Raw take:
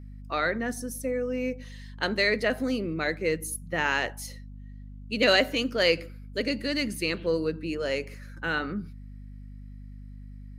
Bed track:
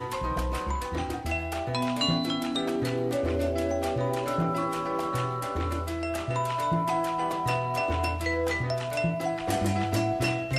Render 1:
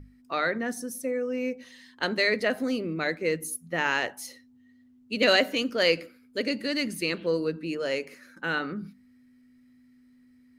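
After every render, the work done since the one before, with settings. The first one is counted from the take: hum notches 50/100/150/200 Hz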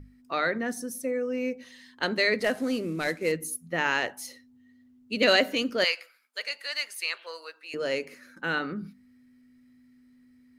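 2.40–3.32 s: CVSD coder 64 kbps; 5.84–7.74 s: high-pass 780 Hz 24 dB/octave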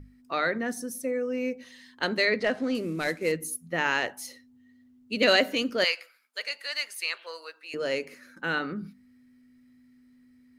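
2.25–2.75 s: low-pass 4.8 kHz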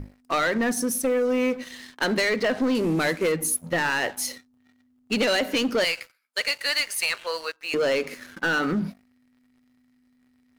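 compression 5:1, threshold -28 dBFS, peak gain reduction 10.5 dB; waveshaping leveller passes 3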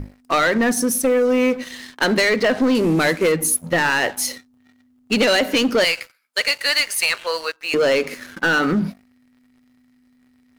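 trim +6 dB

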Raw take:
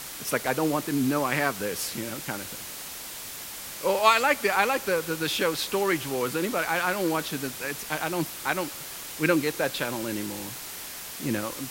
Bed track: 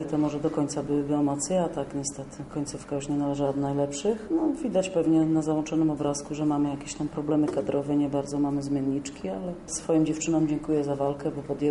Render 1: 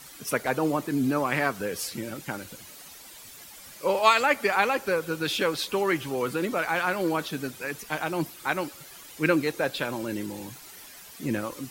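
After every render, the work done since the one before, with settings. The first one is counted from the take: noise reduction 11 dB, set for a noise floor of -39 dBFS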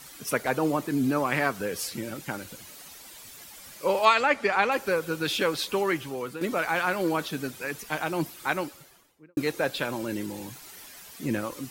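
4.05–4.72 s: distance through air 68 m; 5.77–6.41 s: fade out, to -9.5 dB; 8.50–9.37 s: studio fade out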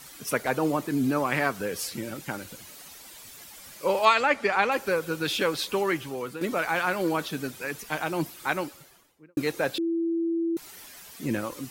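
9.78–10.57 s: bleep 333 Hz -23.5 dBFS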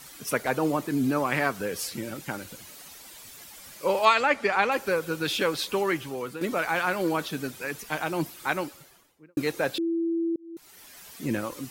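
10.36–11.08 s: fade in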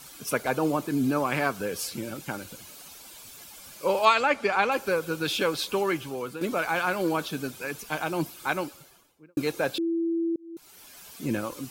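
band-stop 1.9 kHz, Q 6.9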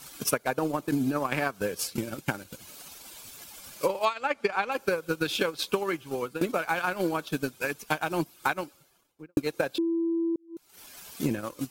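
transient shaper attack +10 dB, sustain -10 dB; compression 6:1, threshold -23 dBFS, peak gain reduction 14.5 dB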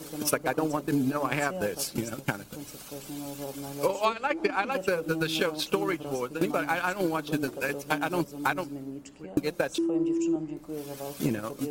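add bed track -11.5 dB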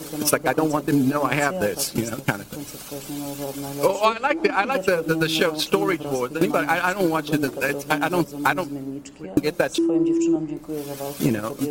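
trim +7 dB; peak limiter -3 dBFS, peak gain reduction 1.5 dB

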